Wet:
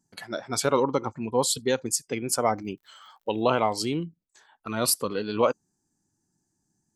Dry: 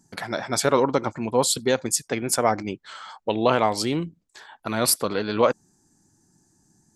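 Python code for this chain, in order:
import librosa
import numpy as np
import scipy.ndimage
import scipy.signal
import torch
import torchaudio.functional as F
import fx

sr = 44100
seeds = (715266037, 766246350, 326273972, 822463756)

y = fx.dmg_crackle(x, sr, seeds[0], per_s=84.0, level_db=-44.0, at=(2.57, 3.91), fade=0.02)
y = fx.noise_reduce_blind(y, sr, reduce_db=10)
y = y * librosa.db_to_amplitude(-3.0)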